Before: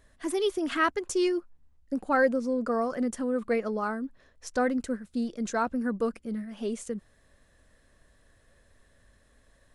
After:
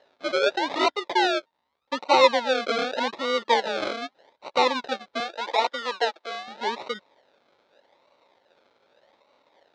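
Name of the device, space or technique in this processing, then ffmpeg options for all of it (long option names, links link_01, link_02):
circuit-bent sampling toy: -filter_complex "[0:a]acrusher=samples=37:mix=1:aa=0.000001:lfo=1:lforange=22.2:lforate=0.83,highpass=430,equalizer=frequency=560:width_type=q:width=4:gain=6,equalizer=frequency=900:width_type=q:width=4:gain=9,equalizer=frequency=1400:width_type=q:width=4:gain=3,equalizer=frequency=2100:width_type=q:width=4:gain=4,equalizer=frequency=3800:width_type=q:width=4:gain=10,lowpass=frequency=5500:width=0.5412,lowpass=frequency=5500:width=1.3066,asettb=1/sr,asplit=3[link_01][link_02][link_03];[link_01]atrim=end=5.204[link_04];[link_02]atrim=start=5.2:end=6.48,asetpts=PTS-STARTPTS,afade=type=in:duration=0.004:curve=qsin,afade=type=out:start_time=1.276:duration=0.004:curve=qsin,highpass=frequency=330:width=0.5412,highpass=frequency=330:width=1.3066[link_05];[link_03]atrim=start=6.476[link_06];[link_04][link_05]acrossfade=duration=0.004:curve1=hsin:curve2=qsin[link_07];[link_07][link_06]acrossfade=duration=0.004:curve1=qsin:curve2=hsin,volume=3dB"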